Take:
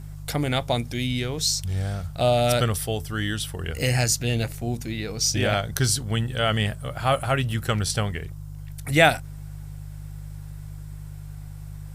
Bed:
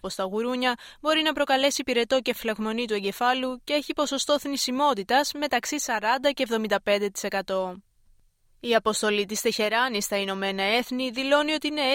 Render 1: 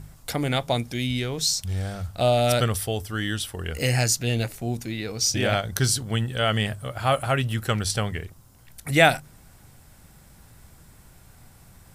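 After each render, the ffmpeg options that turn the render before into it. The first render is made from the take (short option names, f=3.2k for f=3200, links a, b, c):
-af "bandreject=f=50:t=h:w=4,bandreject=f=100:t=h:w=4,bandreject=f=150:t=h:w=4"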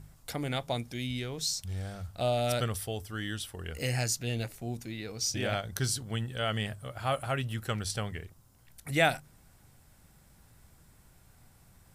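-af "volume=-8.5dB"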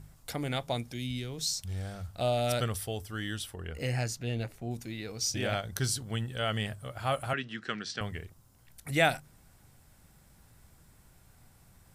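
-filter_complex "[0:a]asettb=1/sr,asplit=3[a][b][c];[a]atrim=end=0.924[d];[b]atrim=start=0.92:end=1.46,asetpts=PTS-STARTPTS,afade=t=in:d=0.004:c=qsin,afade=t=out:st=0.536:d=0.004:c=qsin,acrossover=split=370|3000[e][f][g];[f]acompressor=threshold=-45dB:ratio=6:attack=3.2:release=140:knee=2.83:detection=peak[h];[e][h][g]amix=inputs=3:normalize=0[i];[c]atrim=start=1.456[j];[d][i]acrossfade=d=0.004:c1=hsin:c2=qsin[k];[k][j]acrossfade=d=0.004:c1=qsin:c2=hsin,asettb=1/sr,asplit=3[l][m][n];[l]atrim=end=3.544[o];[m]atrim=start=3.54:end=4.71,asetpts=PTS-STARTPTS,afade=t=in:d=0.004:c=qsin,afade=t=out:st=1.166:d=0.004:c=qsin,highshelf=f=3.8k:g=-10[p];[n]atrim=start=4.706[q];[o][p]acrossfade=d=0.004:c1=hsin:c2=qsin[r];[r][q]acrossfade=d=0.004:c1=qsin:c2=hsin,asettb=1/sr,asplit=3[s][t][u];[s]atrim=end=7.334[v];[t]atrim=start=7.33:end=8.01,asetpts=PTS-STARTPTS,afade=t=in:d=0.004:c=qsin,afade=t=out:st=0.676:d=0.004:c=qsin,highpass=f=180:w=0.5412,highpass=f=180:w=1.3066,equalizer=f=560:t=q:w=4:g=-8,equalizer=f=860:t=q:w=4:g=-9,equalizer=f=1.7k:t=q:w=4:g=7,lowpass=f=5.7k:w=0.5412,lowpass=f=5.7k:w=1.3066[w];[u]atrim=start=8.006[x];[v][w]acrossfade=d=0.004:c1=hsin:c2=qsin[y];[y][x]acrossfade=d=0.004:c1=qsin:c2=hsin"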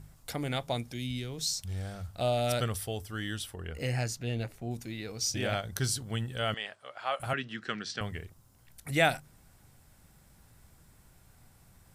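-filter_complex "[0:a]asettb=1/sr,asplit=3[a][b][c];[a]atrim=end=6.544[d];[b]atrim=start=6.54:end=7.2,asetpts=PTS-STARTPTS,afade=t=in:d=0.004:c=qsin,afade=t=out:st=0.656:d=0.004:c=qsin,highpass=610,lowpass=4.7k[e];[c]atrim=start=7.196[f];[d][e]acrossfade=d=0.004:c1=hsin:c2=qsin[g];[g][f]acrossfade=d=0.004:c1=qsin:c2=hsin"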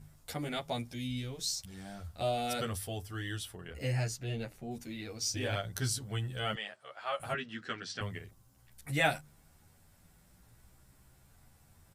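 -filter_complex "[0:a]asplit=2[a][b];[b]adelay=10.6,afreqshift=0.43[c];[a][c]amix=inputs=2:normalize=1"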